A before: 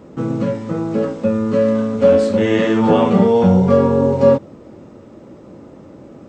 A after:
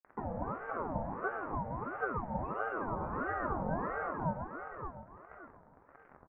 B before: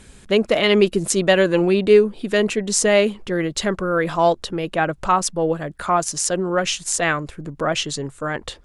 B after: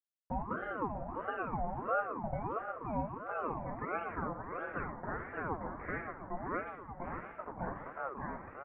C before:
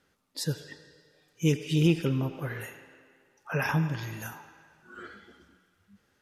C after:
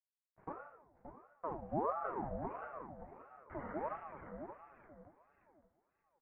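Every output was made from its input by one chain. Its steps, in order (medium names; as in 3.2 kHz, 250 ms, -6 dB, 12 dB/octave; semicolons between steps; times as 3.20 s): coarse spectral quantiser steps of 30 dB; bass shelf 170 Hz -8.5 dB; band-stop 460 Hz, Q 12; compression 6:1, threshold -26 dBFS; flange 0.95 Hz, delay 2.6 ms, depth 6.5 ms, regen +28%; small samples zeroed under -38 dBFS; Gaussian low-pass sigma 8.1 samples; feedback delay 575 ms, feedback 29%, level -7.5 dB; plate-style reverb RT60 1.1 s, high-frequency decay 0.75×, DRR 2.5 dB; ring modulator with a swept carrier 680 Hz, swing 50%, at 1.5 Hz; trim -2 dB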